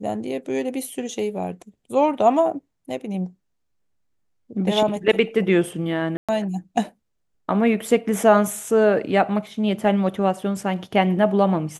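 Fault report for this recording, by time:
0:06.17–0:06.29: drop-out 116 ms

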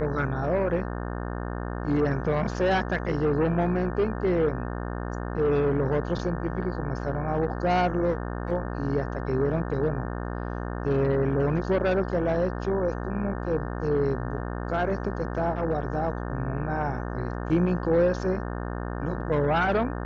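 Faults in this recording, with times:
mains buzz 60 Hz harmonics 30 −32 dBFS

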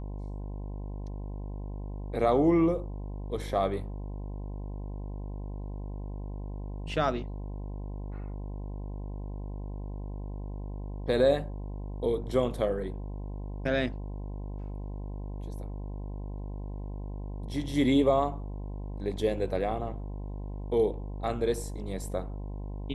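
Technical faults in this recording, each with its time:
mains buzz 50 Hz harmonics 21 −37 dBFS

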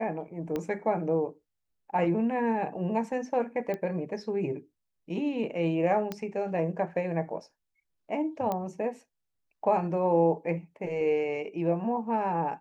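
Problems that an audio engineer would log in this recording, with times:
0:00.56: click −19 dBFS
0:03.74: click −22 dBFS
0:06.12: click −19 dBFS
0:08.52: click −18 dBFS

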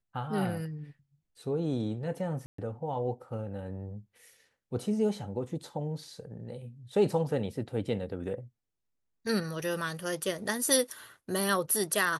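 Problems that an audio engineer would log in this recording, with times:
0:02.46–0:02.58: drop-out 124 ms

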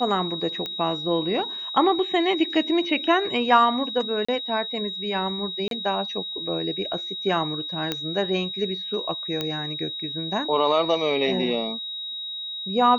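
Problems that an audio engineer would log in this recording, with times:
whistle 3,800 Hz −30 dBFS
0:00.66: click −16 dBFS
0:04.25–0:04.29: drop-out 35 ms
0:05.68–0:05.71: drop-out 32 ms
0:07.92: click −10 dBFS
0:09.41: click −12 dBFS

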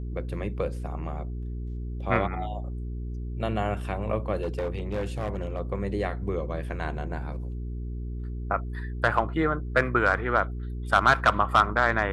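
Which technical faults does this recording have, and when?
mains hum 60 Hz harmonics 7 −33 dBFS
0:04.41–0:05.60: clipping −24.5 dBFS

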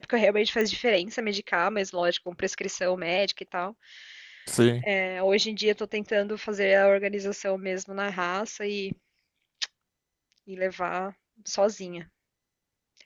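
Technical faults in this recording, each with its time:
0:00.61: click −15 dBFS

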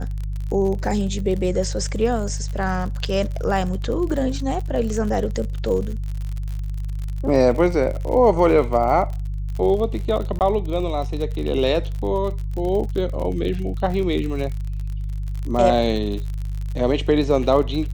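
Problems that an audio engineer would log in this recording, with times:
surface crackle 53 per second −28 dBFS
mains hum 50 Hz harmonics 3 −26 dBFS
0:10.39–0:10.41: drop-out 18 ms

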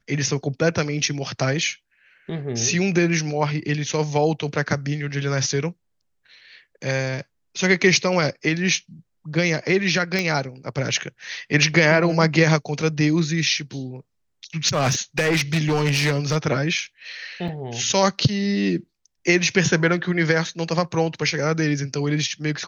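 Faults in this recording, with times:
0:10.19: click −9 dBFS
0:14.68–0:16.37: clipping −16 dBFS
0:17.48: drop-out 4.6 ms

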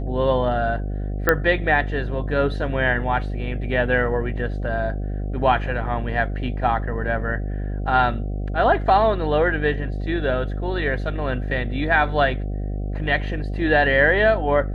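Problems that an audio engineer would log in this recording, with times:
mains buzz 50 Hz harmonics 15 −26 dBFS
0:01.29: click −3 dBFS

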